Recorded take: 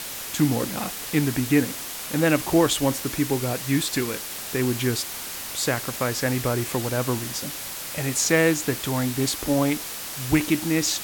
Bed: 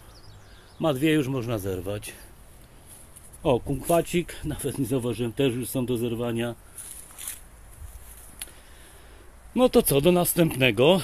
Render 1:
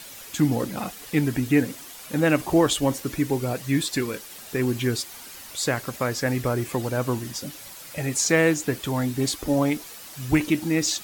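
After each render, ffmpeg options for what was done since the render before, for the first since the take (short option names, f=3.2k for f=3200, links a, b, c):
-af "afftdn=nr=10:nf=-34"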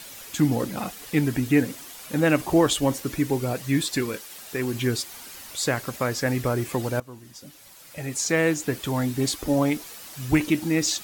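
-filter_complex "[0:a]asettb=1/sr,asplit=3[a][b][c];[a]atrim=end=4.164[d];[b]atrim=start=4.16:end=4.74,asetpts=PTS-STARTPTS,afade=t=in:d=0.004:c=qsin,afade=t=out:st=0.576:d=0.004:c=qsin,lowshelf=f=370:g=-6[e];[c]atrim=start=4.736[f];[d][e]acrossfade=d=0.004:c1=hsin:c2=qsin[g];[g][f]acrossfade=d=0.004:c1=qsin:c2=hsin,asplit=2[h][i];[h]atrim=end=7,asetpts=PTS-STARTPTS,afade=t=out:st=6.996:d=0.004:c=hsin:silence=0.0891251[j];[i]atrim=start=7,asetpts=PTS-STARTPTS,afade=t=in:d=1.92:silence=0.0891251[k];[j][k]concat=n=2:v=0:a=1"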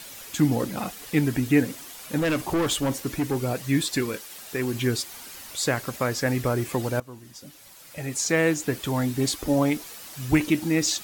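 -filter_complex "[0:a]asettb=1/sr,asplit=3[a][b][c];[a]atrim=end=2.184[d];[b]atrim=start=2.18:end=3.45,asetpts=PTS-STARTPTS,afade=t=in:d=0.004:c=qsin,afade=t=out:st=1.266:d=0.004:c=qsin,volume=20.5dB,asoftclip=hard,volume=-20.5dB[e];[c]atrim=start=3.446[f];[d][e]acrossfade=d=0.004:c1=hsin:c2=qsin[g];[g][f]acrossfade=d=0.004:c1=qsin:c2=hsin"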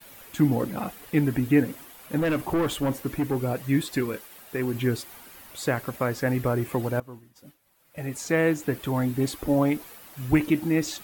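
-af "agate=range=-33dB:threshold=-39dB:ratio=3:detection=peak,equalizer=f=5.9k:t=o:w=1.8:g=-11"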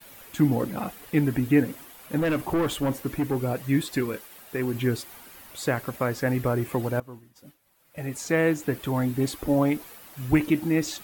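-af anull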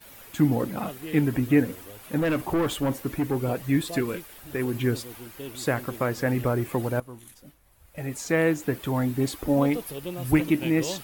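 -filter_complex "[1:a]volume=-15.5dB[a];[0:a][a]amix=inputs=2:normalize=0"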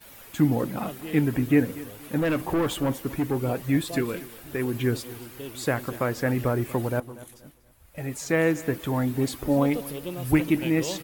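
-af "aecho=1:1:239|478|717:0.119|0.038|0.0122"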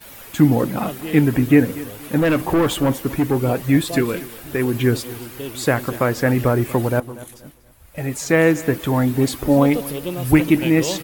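-af "volume=7.5dB,alimiter=limit=-3dB:level=0:latency=1"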